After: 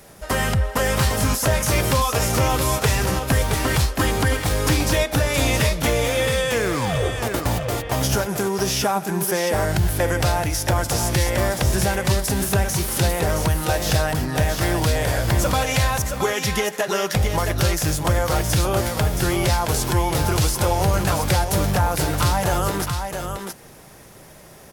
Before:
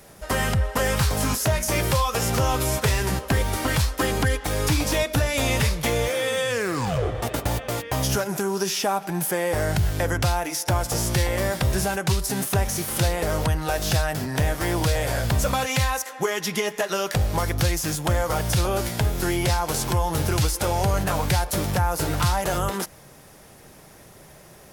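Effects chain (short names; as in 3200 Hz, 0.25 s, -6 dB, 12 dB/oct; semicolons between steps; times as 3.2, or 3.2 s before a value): echo 0.671 s -6 dB; gain +2 dB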